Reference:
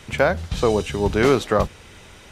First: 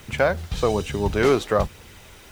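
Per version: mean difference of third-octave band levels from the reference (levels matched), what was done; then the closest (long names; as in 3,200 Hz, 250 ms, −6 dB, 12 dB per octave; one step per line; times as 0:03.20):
1.5 dB: phase shifter 1.1 Hz, delay 3 ms, feedback 25%
bit-depth reduction 8 bits, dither none
level −2.5 dB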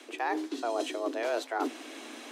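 11.5 dB: reversed playback
downward compressor 6 to 1, threshold −29 dBFS, peak gain reduction 16 dB
reversed playback
frequency shifter +230 Hz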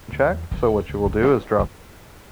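4.0 dB: low-pass filter 1,600 Hz 12 dB per octave
background noise pink −49 dBFS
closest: first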